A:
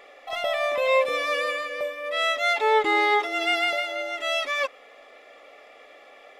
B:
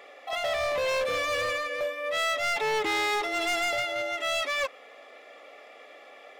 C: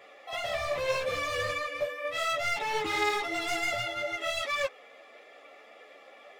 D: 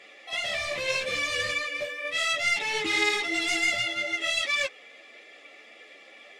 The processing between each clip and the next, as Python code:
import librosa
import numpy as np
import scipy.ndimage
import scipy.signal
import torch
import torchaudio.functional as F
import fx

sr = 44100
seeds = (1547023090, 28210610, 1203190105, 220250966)

y1 = scipy.signal.sosfilt(scipy.signal.butter(4, 97.0, 'highpass', fs=sr, output='sos'), x)
y1 = np.clip(y1, -10.0 ** (-25.0 / 20.0), 10.0 ** (-25.0 / 20.0))
y2 = fx.peak_eq(y1, sr, hz=120.0, db=14.5, octaves=0.72)
y2 = fx.ensemble(y2, sr)
y3 = fx.band_shelf(y2, sr, hz=4200.0, db=12.0, octaves=2.8)
y3 = fx.small_body(y3, sr, hz=(210.0, 320.0), ring_ms=30, db=9)
y3 = y3 * 10.0 ** (-5.0 / 20.0)